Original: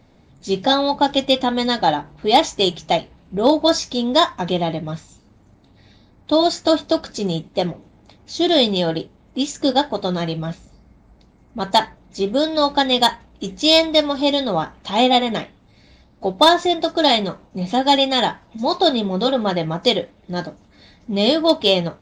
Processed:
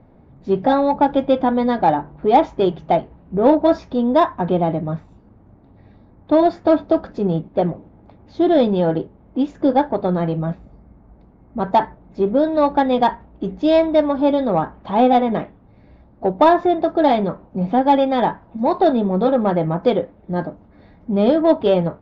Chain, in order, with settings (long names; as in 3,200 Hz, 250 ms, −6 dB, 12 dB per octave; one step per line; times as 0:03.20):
low-pass filter 1,200 Hz 12 dB per octave
in parallel at −5.5 dB: soft clipping −16 dBFS, distortion −11 dB